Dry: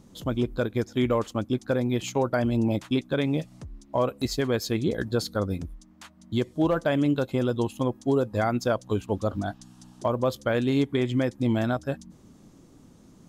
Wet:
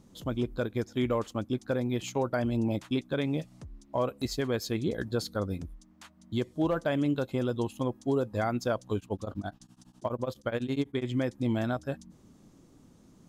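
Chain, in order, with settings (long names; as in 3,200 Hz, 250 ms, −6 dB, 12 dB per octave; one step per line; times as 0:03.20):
0:08.97–0:11.07: tremolo along a rectified sine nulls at 12 Hz
level −4.5 dB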